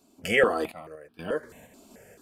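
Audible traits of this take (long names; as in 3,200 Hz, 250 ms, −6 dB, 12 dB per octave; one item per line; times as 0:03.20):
sample-and-hold tremolo 4.2 Hz, depth 90%
notches that jump at a steady rate 4.6 Hz 480–2,000 Hz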